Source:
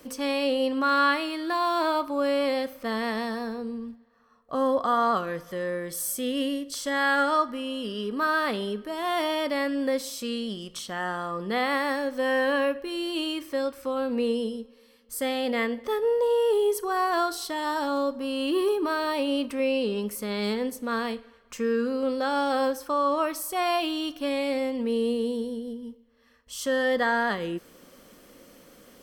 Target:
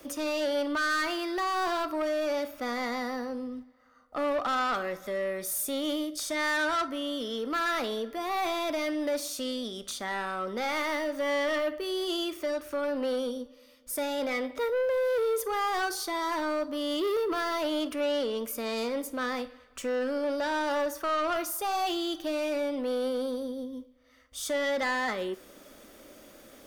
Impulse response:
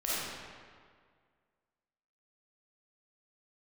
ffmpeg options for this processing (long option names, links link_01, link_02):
-filter_complex "[0:a]acrossover=split=270|3000[link_01][link_02][link_03];[link_01]acompressor=threshold=-39dB:ratio=6[link_04];[link_04][link_02][link_03]amix=inputs=3:normalize=0,asoftclip=type=tanh:threshold=-25dB,equalizer=frequency=150:width_type=o:width=0.56:gain=-5,asplit=2[link_05][link_06];[1:a]atrim=start_sample=2205,atrim=end_sample=3087[link_07];[link_06][link_07]afir=irnorm=-1:irlink=0,volume=-19.5dB[link_08];[link_05][link_08]amix=inputs=2:normalize=0,asetrate=48000,aresample=44100"